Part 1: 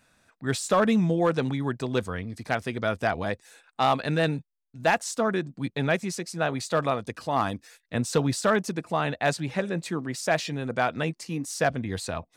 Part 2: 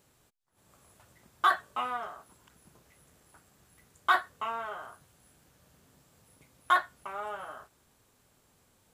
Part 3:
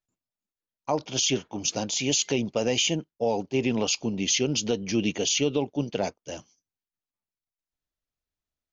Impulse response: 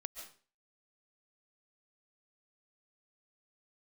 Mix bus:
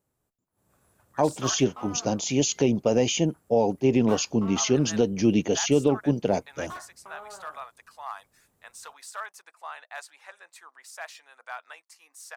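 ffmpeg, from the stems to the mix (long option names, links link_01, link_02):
-filter_complex "[0:a]highpass=frequency=940:width=0.5412,highpass=frequency=940:width=1.3066,adelay=700,volume=-12dB,asplit=3[link_01][link_02][link_03];[link_01]atrim=end=1.65,asetpts=PTS-STARTPTS,afade=type=out:start_time=1.646:duration=0.004:curve=hsin[link_04];[link_02]atrim=start=1.65:end=4.56,asetpts=PTS-STARTPTS,volume=0[link_05];[link_03]atrim=start=4.56,asetpts=PTS-STARTPTS,afade=type=in:duration=0.004:curve=hsin[link_06];[link_04][link_05][link_06]concat=n=3:v=0:a=1[link_07];[1:a]asoftclip=type=tanh:threshold=-29.5dB,volume=-10dB[link_08];[2:a]adelay=300,volume=-2.5dB[link_09];[link_07][link_08][link_09]amix=inputs=3:normalize=0,equalizer=frequency=3500:width=0.48:gain=-10,dynaudnorm=framelen=110:gausssize=9:maxgain=7.5dB"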